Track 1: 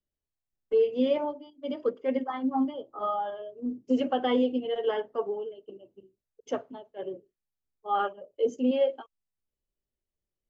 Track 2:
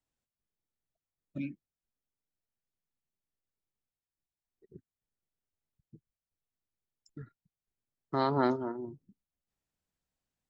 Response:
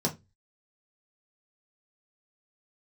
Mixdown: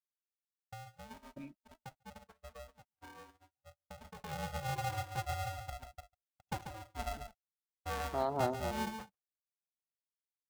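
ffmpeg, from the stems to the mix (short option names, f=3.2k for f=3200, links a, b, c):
-filter_complex "[0:a]equalizer=f=410:t=o:w=0.51:g=14,acompressor=threshold=-23dB:ratio=20,aeval=exprs='val(0)*sgn(sin(2*PI*330*n/s))':c=same,volume=-11.5dB,afade=t=in:st=4.19:d=0.28:silence=0.251189,asplit=2[a][b];[b]volume=-8dB[c];[1:a]equalizer=f=680:w=1.9:g=14,volume=-12.5dB[d];[c]aecho=0:1:140:1[e];[a][d][e]amix=inputs=3:normalize=0,agate=range=-43dB:threshold=-51dB:ratio=16:detection=peak"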